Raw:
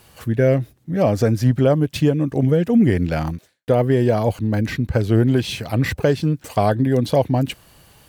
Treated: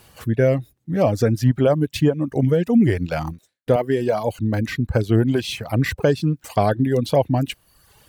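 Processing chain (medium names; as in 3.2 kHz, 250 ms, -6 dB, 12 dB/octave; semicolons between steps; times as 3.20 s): 3.76–4.34 s: high-pass 230 Hz 6 dB/octave; reverb removal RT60 0.8 s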